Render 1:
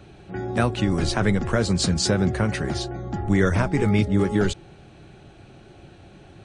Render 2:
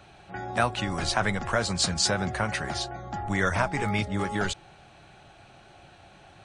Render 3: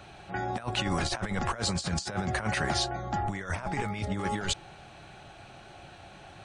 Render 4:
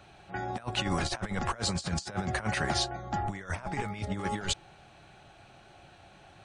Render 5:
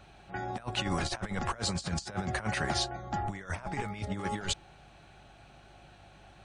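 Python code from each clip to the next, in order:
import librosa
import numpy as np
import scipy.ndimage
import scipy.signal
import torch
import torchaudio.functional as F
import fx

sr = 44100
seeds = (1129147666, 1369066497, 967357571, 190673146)

y1 = fx.low_shelf_res(x, sr, hz=540.0, db=-8.5, q=1.5)
y2 = fx.over_compress(y1, sr, threshold_db=-30.0, ratio=-0.5)
y3 = fx.upward_expand(y2, sr, threshold_db=-38.0, expansion=1.5)
y4 = fx.add_hum(y3, sr, base_hz=50, snr_db=25)
y4 = F.gain(torch.from_numpy(y4), -1.5).numpy()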